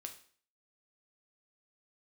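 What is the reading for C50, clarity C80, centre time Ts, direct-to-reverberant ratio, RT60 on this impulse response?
10.5 dB, 15.0 dB, 11 ms, 4.0 dB, 0.50 s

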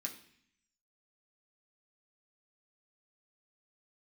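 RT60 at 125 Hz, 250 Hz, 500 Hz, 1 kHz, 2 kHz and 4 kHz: 0.90, 0.90, 0.60, 0.60, 0.85, 0.75 seconds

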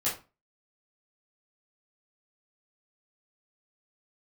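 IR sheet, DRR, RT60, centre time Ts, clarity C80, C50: −9.0 dB, 0.30 s, 30 ms, 14.0 dB, 7.5 dB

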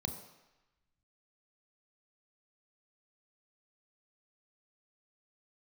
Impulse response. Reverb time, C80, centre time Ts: 1.0 s, 10.5 dB, 19 ms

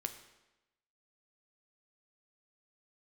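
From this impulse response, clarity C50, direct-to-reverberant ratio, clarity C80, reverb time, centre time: 10.5 dB, 7.0 dB, 12.5 dB, 1.0 s, 13 ms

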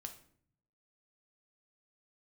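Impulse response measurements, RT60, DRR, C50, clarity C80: 0.60 s, 5.0 dB, 11.0 dB, 15.0 dB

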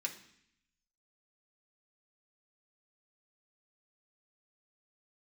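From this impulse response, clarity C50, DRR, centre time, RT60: 11.0 dB, −0.5 dB, 13 ms, 0.65 s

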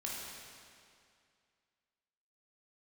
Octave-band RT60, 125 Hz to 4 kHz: 2.3, 2.3, 2.3, 2.3, 2.2, 2.1 seconds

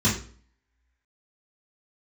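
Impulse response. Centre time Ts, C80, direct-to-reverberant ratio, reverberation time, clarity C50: 31 ms, 11.5 dB, −9.5 dB, 0.45 s, 6.5 dB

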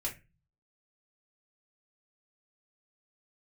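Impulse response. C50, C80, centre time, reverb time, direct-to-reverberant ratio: 12.0 dB, 19.5 dB, 16 ms, 0.25 s, −3.5 dB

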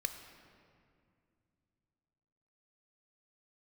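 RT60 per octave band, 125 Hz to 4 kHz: 3.6, 3.4, 2.5, 2.2, 2.0, 1.4 seconds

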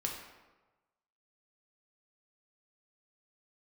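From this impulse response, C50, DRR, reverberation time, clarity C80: 4.0 dB, −0.5 dB, 1.2 s, 6.0 dB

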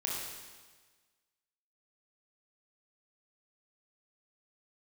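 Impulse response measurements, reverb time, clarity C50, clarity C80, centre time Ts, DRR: 1.4 s, −0.5 dB, 2.0 dB, 87 ms, −4.0 dB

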